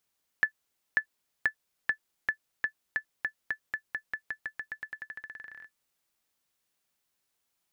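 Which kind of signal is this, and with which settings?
bouncing ball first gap 0.54 s, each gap 0.9, 1.74 kHz, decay 88 ms -13 dBFS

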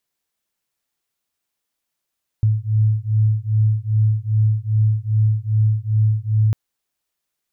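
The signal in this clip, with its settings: beating tones 107 Hz, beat 2.5 Hz, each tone -17.5 dBFS 4.10 s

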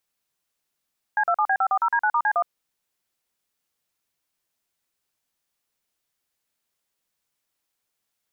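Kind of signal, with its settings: DTMF "C27B540D9*C1", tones 66 ms, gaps 42 ms, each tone -20.5 dBFS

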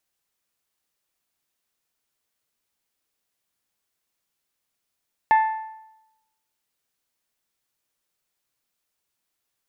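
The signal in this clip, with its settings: metal hit bell, lowest mode 879 Hz, decay 0.91 s, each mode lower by 10 dB, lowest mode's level -11.5 dB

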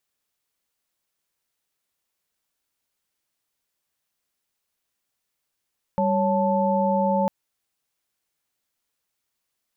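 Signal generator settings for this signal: chord G3/C#5/A5 sine, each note -23 dBFS 1.30 s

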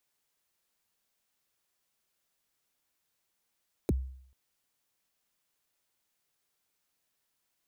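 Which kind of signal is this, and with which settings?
kick drum length 0.44 s, from 480 Hz, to 65 Hz, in 30 ms, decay 0.63 s, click on, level -21.5 dB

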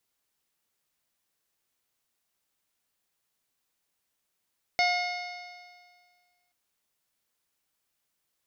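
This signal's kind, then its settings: stretched partials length 1.73 s, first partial 711 Hz, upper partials -14/0/-18/-13/-8/-9/-19 dB, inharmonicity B 0.0025, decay 1.82 s, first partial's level -23.5 dB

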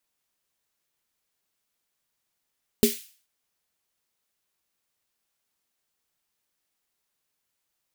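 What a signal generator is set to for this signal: snare drum length 0.43 s, tones 230 Hz, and 410 Hz, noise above 2.2 kHz, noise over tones -8 dB, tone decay 0.17 s, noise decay 0.45 s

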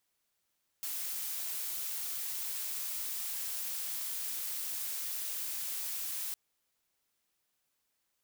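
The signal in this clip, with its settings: noise blue, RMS -37.5 dBFS 5.51 s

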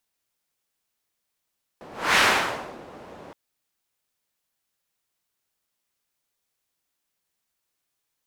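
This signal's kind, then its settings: whoosh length 1.52 s, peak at 0.37 s, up 0.30 s, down 0.68 s, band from 530 Hz, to 1.8 kHz, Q 1, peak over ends 26 dB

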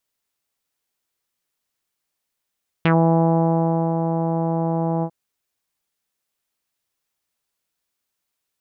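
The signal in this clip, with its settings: synth note saw E3 24 dB/octave, low-pass 850 Hz, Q 2.3, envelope 2 oct, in 0.10 s, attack 2.3 ms, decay 1.09 s, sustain -6.5 dB, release 0.07 s, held 2.18 s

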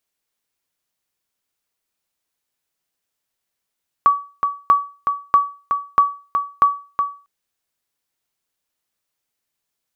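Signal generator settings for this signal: sonar ping 1.14 kHz, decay 0.35 s, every 0.64 s, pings 5, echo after 0.37 s, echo -6.5 dB -5 dBFS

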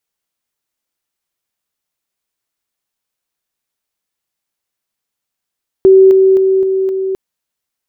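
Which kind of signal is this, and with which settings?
level ladder 382 Hz -2 dBFS, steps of -3 dB, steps 5, 0.26 s 0.00 s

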